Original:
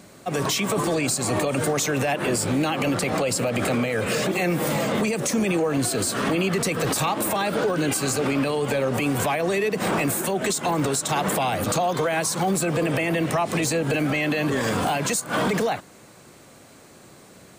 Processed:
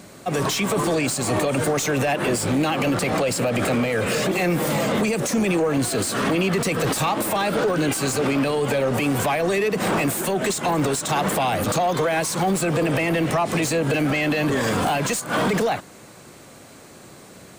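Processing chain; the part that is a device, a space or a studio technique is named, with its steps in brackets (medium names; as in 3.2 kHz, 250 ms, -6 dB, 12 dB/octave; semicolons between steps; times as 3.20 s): saturation between pre-emphasis and de-emphasis (treble shelf 4 kHz +11 dB; saturation -18 dBFS, distortion -12 dB; treble shelf 4 kHz -11 dB); trim +4 dB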